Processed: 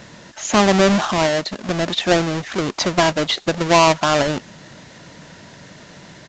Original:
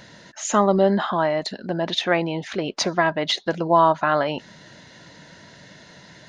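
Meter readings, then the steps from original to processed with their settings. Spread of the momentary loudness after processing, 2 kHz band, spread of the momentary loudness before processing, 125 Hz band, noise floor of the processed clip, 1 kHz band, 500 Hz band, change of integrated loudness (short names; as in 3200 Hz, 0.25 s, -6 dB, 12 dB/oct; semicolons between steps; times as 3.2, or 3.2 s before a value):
9 LU, +4.5 dB, 10 LU, +5.5 dB, -43 dBFS, +2.0 dB, +3.0 dB, +4.0 dB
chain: half-waves squared off; requantised 8-bit, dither triangular; downsampling 16000 Hz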